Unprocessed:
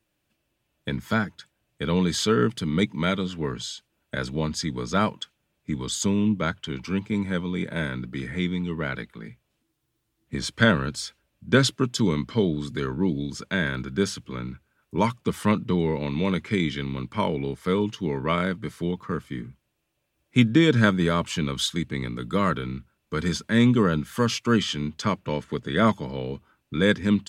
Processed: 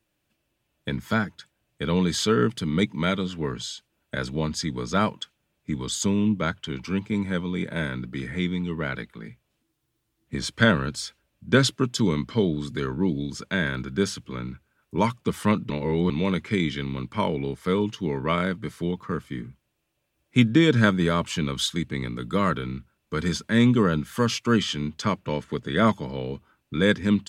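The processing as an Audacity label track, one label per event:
15.700000	16.100000	reverse

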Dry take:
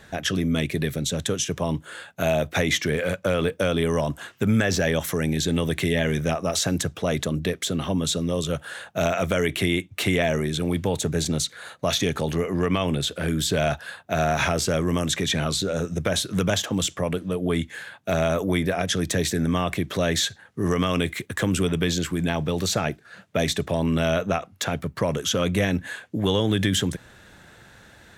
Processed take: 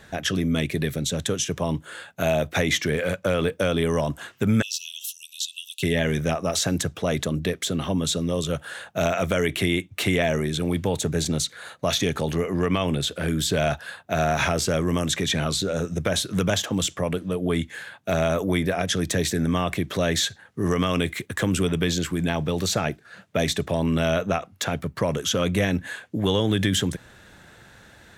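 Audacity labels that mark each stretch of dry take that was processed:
4.620000	5.830000	Chebyshev high-pass 2.6 kHz, order 10

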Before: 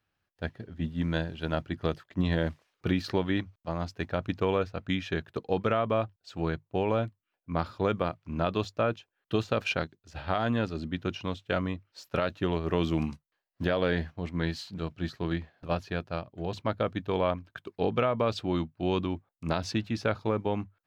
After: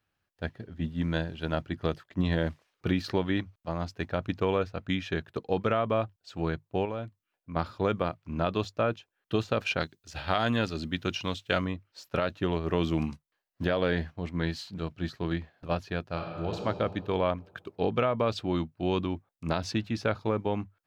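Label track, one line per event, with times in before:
6.850000	7.560000	compression 1.5:1, threshold -43 dBFS
9.800000	11.650000	treble shelf 2.2 kHz +10 dB
16.040000	16.560000	reverb throw, RT60 2.3 s, DRR 1 dB

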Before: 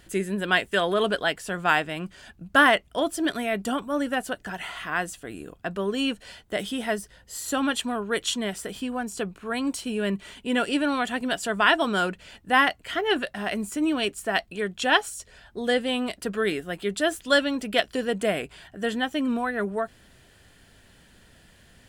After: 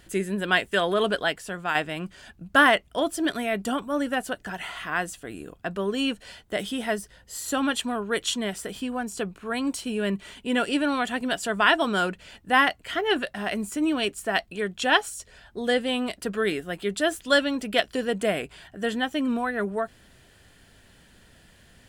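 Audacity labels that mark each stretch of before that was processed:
1.230000	1.750000	fade out, to -7 dB

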